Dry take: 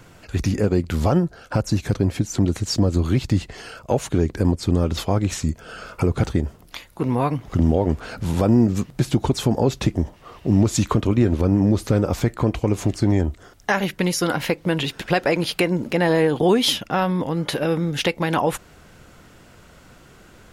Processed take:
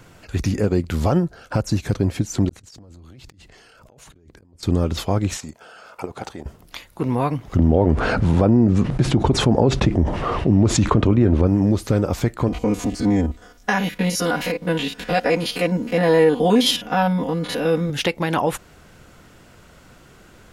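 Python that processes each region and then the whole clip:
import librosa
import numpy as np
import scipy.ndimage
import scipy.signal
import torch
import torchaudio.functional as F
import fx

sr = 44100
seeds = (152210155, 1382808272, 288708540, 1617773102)

y = fx.chain(x, sr, fx.gate_flip(shuts_db=-14.0, range_db=-27),
    fx.transient(attack_db=-10, sustain_db=8),
    fx.over_compress(threshold_db=-48.0, ratio=-1.0), at=(2.49, 4.63))
y = fx.chain(y, sr, fx.highpass(hz=480.0, slope=6),
    fx.peak_eq(hz=790.0, db=8.0, octaves=0.74),
    fx.level_steps(step_db=11), at=(5.37, 6.46))
y = fx.chain(y, sr, fx.lowpass(hz=1500.0, slope=6),
    fx.resample_bad(factor=2, down='none', up='filtered'),
    fx.env_flatten(amount_pct=70), at=(7.56, 11.47))
y = fx.chain(y, sr, fx.spec_steps(hold_ms=50),
    fx.comb(ms=4.1, depth=0.88), at=(12.48, 17.9))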